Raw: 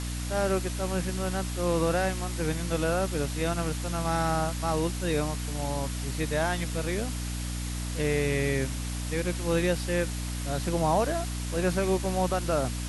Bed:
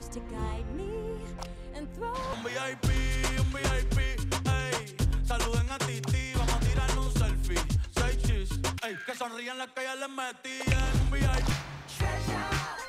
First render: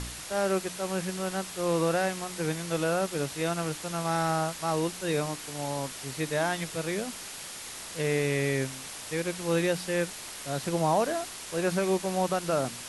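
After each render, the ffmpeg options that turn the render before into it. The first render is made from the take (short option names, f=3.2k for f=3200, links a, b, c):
-af "bandreject=f=60:t=h:w=4,bandreject=f=120:t=h:w=4,bandreject=f=180:t=h:w=4,bandreject=f=240:t=h:w=4,bandreject=f=300:t=h:w=4"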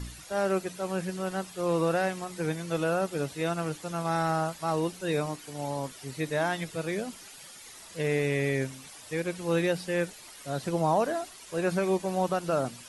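-af "afftdn=nr=11:nf=-41"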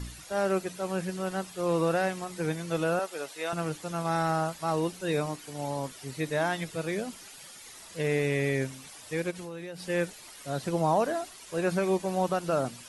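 -filter_complex "[0:a]asettb=1/sr,asplit=3[a][b][c];[a]atrim=end=2.994[d];[b]atrim=start=2.99:end=3.53,asetpts=PTS-STARTPTS,afade=t=in:d=0.004:c=qsin,afade=t=out:st=0.536:d=0.004:c=qsin,highpass=540[e];[c]atrim=start=3.526[f];[d][e]acrossfade=d=0.004:c1=hsin:c2=qsin[g];[g][f]acrossfade=d=0.004:c1=qsin:c2=hsin,asplit=3[h][i][j];[h]afade=t=out:st=9.3:d=0.02[k];[i]acompressor=threshold=-35dB:ratio=12:attack=3.2:release=140:knee=1:detection=peak,afade=t=in:st=9.3:d=0.02,afade=t=out:st=9.88:d=0.02[l];[j]afade=t=in:st=9.88:d=0.02[m];[k][l][m]amix=inputs=3:normalize=0"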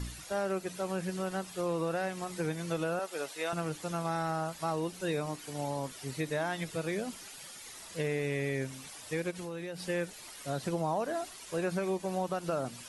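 -af "acompressor=threshold=-30dB:ratio=3"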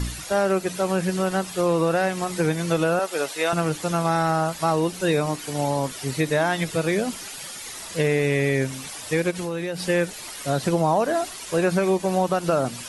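-af "volume=11.5dB"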